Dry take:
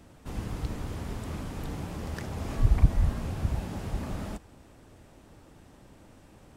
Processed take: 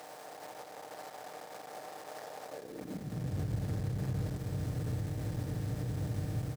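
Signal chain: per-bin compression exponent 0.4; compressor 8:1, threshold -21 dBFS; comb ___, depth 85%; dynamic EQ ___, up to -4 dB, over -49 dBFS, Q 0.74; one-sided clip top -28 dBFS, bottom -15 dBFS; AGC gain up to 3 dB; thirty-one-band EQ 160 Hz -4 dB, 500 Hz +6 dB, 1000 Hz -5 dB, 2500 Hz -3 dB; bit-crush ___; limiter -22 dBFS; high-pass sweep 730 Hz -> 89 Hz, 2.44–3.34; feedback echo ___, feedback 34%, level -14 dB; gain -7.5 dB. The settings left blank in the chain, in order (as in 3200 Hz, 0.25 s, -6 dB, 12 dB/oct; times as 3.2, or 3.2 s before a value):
6.6 ms, 1600 Hz, 8-bit, 84 ms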